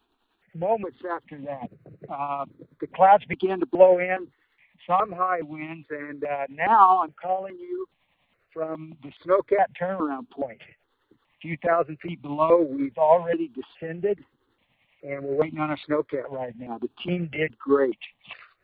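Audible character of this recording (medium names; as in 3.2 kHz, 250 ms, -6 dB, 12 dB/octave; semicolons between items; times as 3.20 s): tremolo triangle 10 Hz, depth 60%; notches that jump at a steady rate 2.4 Hz 550–1700 Hz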